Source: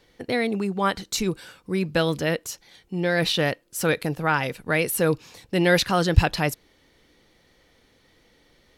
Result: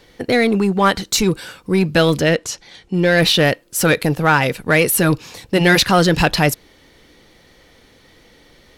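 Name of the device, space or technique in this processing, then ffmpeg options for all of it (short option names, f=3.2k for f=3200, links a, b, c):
parallel distortion: -filter_complex "[0:a]asettb=1/sr,asplit=3[a][b][c];[a]atrim=end=2.224[d];[b]atrim=start=2.22:end=2.94,asetpts=PTS-STARTPTS,afade=t=in:d=0.004:c=qsin,afade=t=out:st=0.716:d=0.004:c=qsin,lowpass=7.5k[e];[c]atrim=start=2.936[f];[d][e]acrossfade=d=0.004:c1=hsin:c2=qsin[g];[g][f]acrossfade=d=0.004:c1=qsin:c2=hsin,afftfilt=real='re*lt(hypot(re,im),0.891)':imag='im*lt(hypot(re,im),0.891)':win_size=1024:overlap=0.75,asplit=2[h][i];[i]asoftclip=type=hard:threshold=-23.5dB,volume=-4dB[j];[h][j]amix=inputs=2:normalize=0,volume=6dB"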